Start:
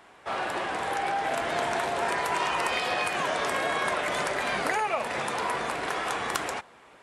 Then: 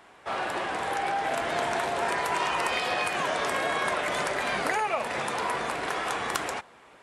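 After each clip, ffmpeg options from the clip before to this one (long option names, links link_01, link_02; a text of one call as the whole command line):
ffmpeg -i in.wav -af anull out.wav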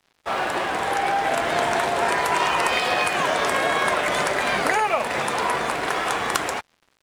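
ffmpeg -i in.wav -af "aeval=exprs='sgn(val(0))*max(abs(val(0))-0.00398,0)':channel_layout=same,volume=7dB" out.wav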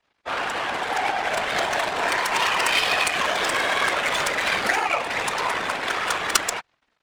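ffmpeg -i in.wav -af "crystalizer=i=8.5:c=0,afftfilt=real='hypot(re,im)*cos(2*PI*random(0))':imag='hypot(re,im)*sin(2*PI*random(1))':win_size=512:overlap=0.75,adynamicsmooth=sensitivity=1:basefreq=1900" out.wav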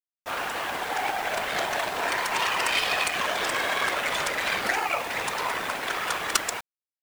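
ffmpeg -i in.wav -af "acrusher=bits=5:mix=0:aa=0.000001,volume=-4dB" out.wav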